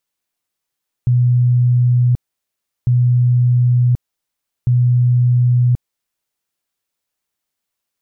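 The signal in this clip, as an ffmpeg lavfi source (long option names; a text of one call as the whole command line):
ffmpeg -f lavfi -i "aevalsrc='0.335*sin(2*PI*123*mod(t,1.8))*lt(mod(t,1.8),133/123)':duration=5.4:sample_rate=44100" out.wav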